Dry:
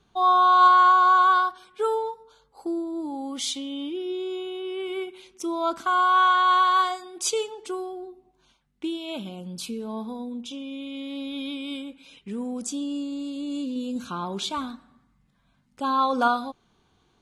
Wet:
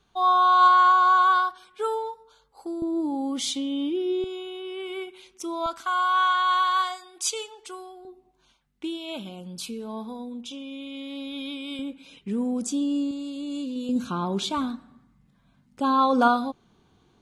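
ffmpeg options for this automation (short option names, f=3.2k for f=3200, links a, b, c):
-af "asetnsamples=n=441:p=0,asendcmd='2.82 equalizer g 5.5;4.24 equalizer g -4.5;5.66 equalizer g -14;8.05 equalizer g -2.5;11.79 equalizer g 5;13.11 equalizer g -1.5;13.89 equalizer g 6',equalizer=f=200:t=o:w=3:g=-5"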